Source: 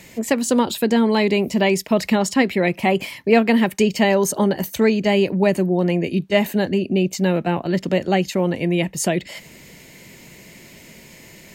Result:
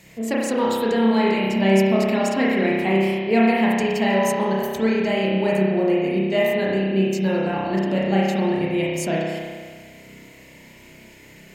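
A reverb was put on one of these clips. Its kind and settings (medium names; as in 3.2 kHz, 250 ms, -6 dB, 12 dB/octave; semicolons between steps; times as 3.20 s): spring tank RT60 1.7 s, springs 31 ms, chirp 70 ms, DRR -5.5 dB; trim -7.5 dB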